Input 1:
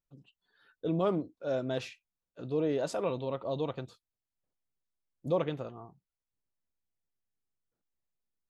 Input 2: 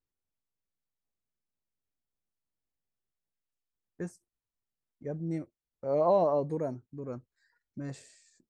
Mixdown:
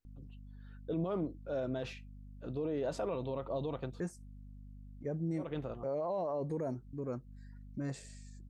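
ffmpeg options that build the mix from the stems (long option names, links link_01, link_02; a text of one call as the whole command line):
ffmpeg -i stem1.wav -i stem2.wav -filter_complex "[0:a]highshelf=frequency=3800:gain=-9,aeval=exprs='val(0)+0.00355*(sin(2*PI*50*n/s)+sin(2*PI*2*50*n/s)/2+sin(2*PI*3*50*n/s)/3+sin(2*PI*4*50*n/s)/4+sin(2*PI*5*50*n/s)/5)':channel_layout=same,adelay=50,volume=-0.5dB[link_01];[1:a]acompressor=threshold=-28dB:ratio=6,volume=0.5dB,asplit=2[link_02][link_03];[link_03]apad=whole_len=376983[link_04];[link_01][link_04]sidechaincompress=threshold=-53dB:ratio=6:attack=16:release=110[link_05];[link_05][link_02]amix=inputs=2:normalize=0,alimiter=level_in=4dB:limit=-24dB:level=0:latency=1:release=25,volume=-4dB" out.wav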